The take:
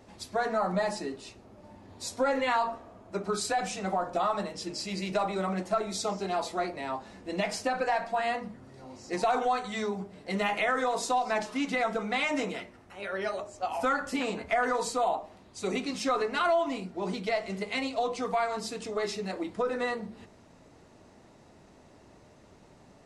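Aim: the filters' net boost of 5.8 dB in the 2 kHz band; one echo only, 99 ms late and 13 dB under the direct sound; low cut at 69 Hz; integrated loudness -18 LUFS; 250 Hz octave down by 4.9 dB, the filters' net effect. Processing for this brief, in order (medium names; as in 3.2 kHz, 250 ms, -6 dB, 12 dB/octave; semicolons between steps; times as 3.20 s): high-pass 69 Hz; peaking EQ 250 Hz -6.5 dB; peaking EQ 2 kHz +7 dB; delay 99 ms -13 dB; trim +11 dB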